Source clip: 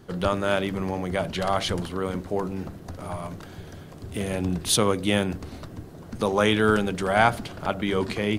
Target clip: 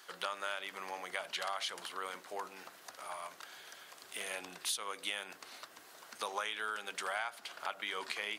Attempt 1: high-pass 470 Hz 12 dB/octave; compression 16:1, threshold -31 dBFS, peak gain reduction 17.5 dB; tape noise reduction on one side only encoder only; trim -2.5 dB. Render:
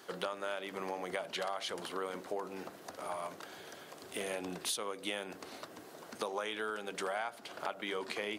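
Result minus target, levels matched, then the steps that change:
500 Hz band +7.0 dB
change: high-pass 1.1 kHz 12 dB/octave

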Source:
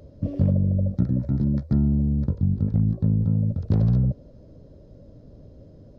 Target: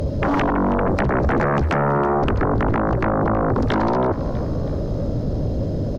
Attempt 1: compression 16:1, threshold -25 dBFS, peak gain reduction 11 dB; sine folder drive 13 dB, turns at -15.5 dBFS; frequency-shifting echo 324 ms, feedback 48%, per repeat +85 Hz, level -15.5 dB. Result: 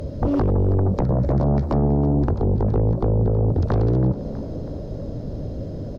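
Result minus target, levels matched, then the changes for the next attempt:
sine folder: distortion -22 dB
change: sine folder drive 21 dB, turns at -15.5 dBFS

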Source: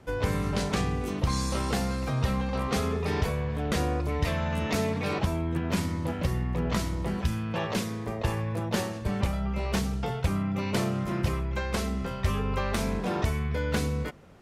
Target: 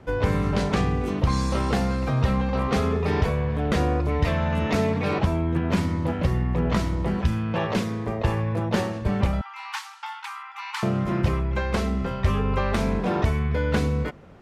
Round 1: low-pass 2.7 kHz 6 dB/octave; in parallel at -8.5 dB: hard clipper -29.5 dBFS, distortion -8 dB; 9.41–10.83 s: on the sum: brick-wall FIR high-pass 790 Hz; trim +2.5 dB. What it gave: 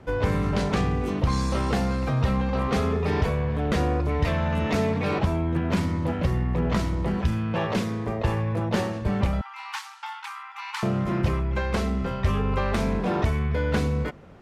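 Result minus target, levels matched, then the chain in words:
hard clipper: distortion +18 dB
low-pass 2.7 kHz 6 dB/octave; in parallel at -8.5 dB: hard clipper -18 dBFS, distortion -26 dB; 9.41–10.83 s: on the sum: brick-wall FIR high-pass 790 Hz; trim +2.5 dB

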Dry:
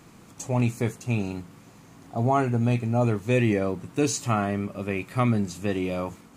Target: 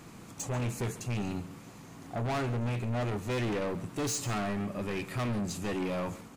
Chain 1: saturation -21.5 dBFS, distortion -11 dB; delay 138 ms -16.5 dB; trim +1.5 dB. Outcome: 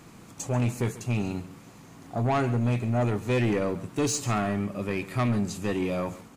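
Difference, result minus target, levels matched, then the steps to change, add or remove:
saturation: distortion -7 dB
change: saturation -31 dBFS, distortion -5 dB

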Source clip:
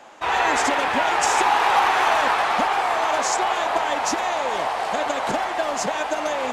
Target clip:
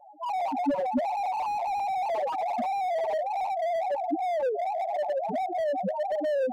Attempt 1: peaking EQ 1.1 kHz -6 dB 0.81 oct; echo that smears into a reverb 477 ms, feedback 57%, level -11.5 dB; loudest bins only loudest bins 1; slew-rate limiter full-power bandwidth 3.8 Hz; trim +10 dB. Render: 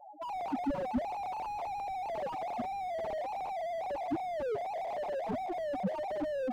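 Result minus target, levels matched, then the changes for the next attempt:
slew-rate limiter: distortion +10 dB
change: slew-rate limiter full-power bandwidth 10.5 Hz

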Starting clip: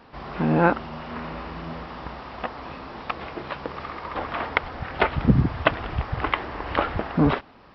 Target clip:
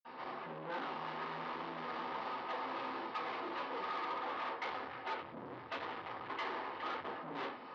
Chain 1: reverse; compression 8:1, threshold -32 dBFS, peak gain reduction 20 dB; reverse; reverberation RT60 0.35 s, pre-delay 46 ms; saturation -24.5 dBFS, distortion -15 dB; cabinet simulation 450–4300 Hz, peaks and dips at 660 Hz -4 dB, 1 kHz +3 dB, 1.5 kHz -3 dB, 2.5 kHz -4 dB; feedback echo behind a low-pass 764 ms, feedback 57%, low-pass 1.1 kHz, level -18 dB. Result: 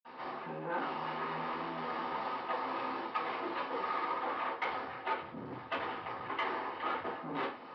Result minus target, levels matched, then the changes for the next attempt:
saturation: distortion -8 dB
change: saturation -34.5 dBFS, distortion -7 dB

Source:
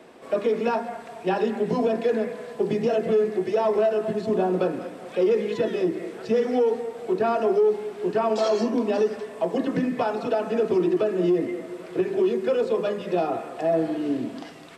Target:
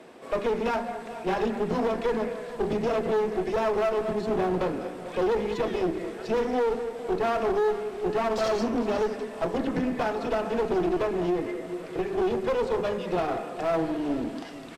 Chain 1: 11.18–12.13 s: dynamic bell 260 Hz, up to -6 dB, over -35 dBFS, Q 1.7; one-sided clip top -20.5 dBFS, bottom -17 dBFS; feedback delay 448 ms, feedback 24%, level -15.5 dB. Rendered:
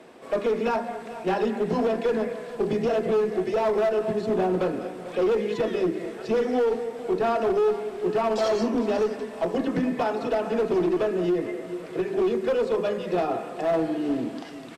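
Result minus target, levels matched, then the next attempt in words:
one-sided clip: distortion -6 dB
11.18–12.13 s: dynamic bell 260 Hz, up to -6 dB, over -35 dBFS, Q 1.7; one-sided clip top -30 dBFS, bottom -17 dBFS; feedback delay 448 ms, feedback 24%, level -15.5 dB

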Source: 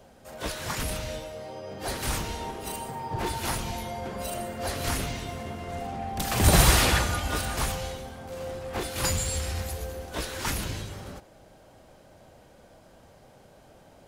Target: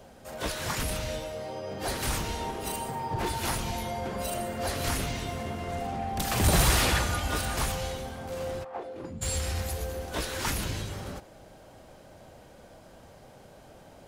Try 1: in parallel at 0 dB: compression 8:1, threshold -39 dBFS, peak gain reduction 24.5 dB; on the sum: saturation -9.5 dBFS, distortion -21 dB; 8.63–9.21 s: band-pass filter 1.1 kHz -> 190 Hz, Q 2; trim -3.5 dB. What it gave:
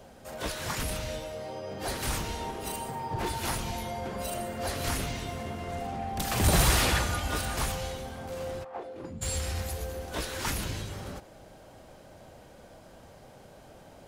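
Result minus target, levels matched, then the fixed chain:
compression: peak gain reduction +5.5 dB
in parallel at 0 dB: compression 8:1, threshold -32.5 dBFS, peak gain reduction 19 dB; on the sum: saturation -9.5 dBFS, distortion -21 dB; 8.63–9.21 s: band-pass filter 1.1 kHz -> 190 Hz, Q 2; trim -3.5 dB

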